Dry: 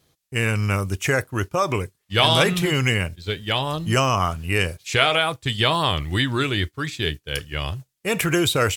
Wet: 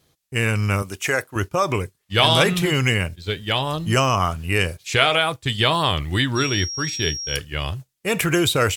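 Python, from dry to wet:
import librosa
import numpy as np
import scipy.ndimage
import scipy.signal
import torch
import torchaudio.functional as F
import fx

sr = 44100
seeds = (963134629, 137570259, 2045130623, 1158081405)

y = fx.highpass(x, sr, hz=400.0, slope=6, at=(0.82, 1.36))
y = fx.dmg_tone(y, sr, hz=5600.0, level_db=-28.0, at=(6.35, 7.35), fade=0.02)
y = y * 10.0 ** (1.0 / 20.0)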